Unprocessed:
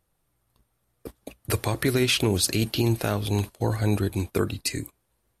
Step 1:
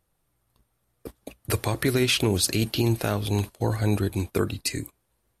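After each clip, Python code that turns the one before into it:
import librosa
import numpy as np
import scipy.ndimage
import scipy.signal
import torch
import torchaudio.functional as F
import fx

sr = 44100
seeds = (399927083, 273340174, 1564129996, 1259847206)

y = x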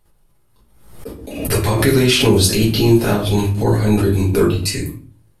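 y = fx.room_shoebox(x, sr, seeds[0], volume_m3=32.0, walls='mixed', distance_m=1.3)
y = fx.pre_swell(y, sr, db_per_s=67.0)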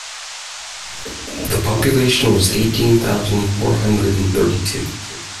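y = fx.dmg_noise_band(x, sr, seeds[1], low_hz=660.0, high_hz=7500.0, level_db=-30.0)
y = fx.echo_feedback(y, sr, ms=369, feedback_pct=51, wet_db=-20)
y = y * librosa.db_to_amplitude(-1.0)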